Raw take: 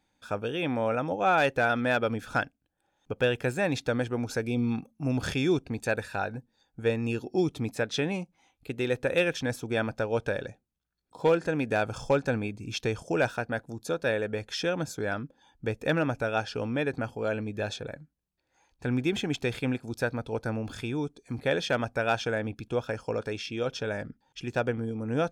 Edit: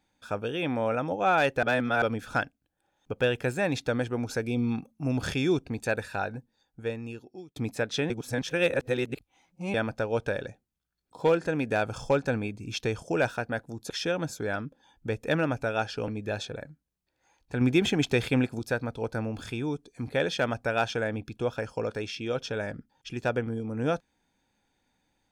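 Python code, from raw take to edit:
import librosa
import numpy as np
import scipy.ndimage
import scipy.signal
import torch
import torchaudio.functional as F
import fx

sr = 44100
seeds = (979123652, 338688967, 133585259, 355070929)

y = fx.edit(x, sr, fx.reverse_span(start_s=1.63, length_s=0.39),
    fx.fade_out_span(start_s=6.27, length_s=1.29),
    fx.reverse_span(start_s=8.1, length_s=1.64),
    fx.cut(start_s=13.9, length_s=0.58),
    fx.cut(start_s=16.66, length_s=0.73),
    fx.clip_gain(start_s=18.92, length_s=0.98, db=4.5), tone=tone)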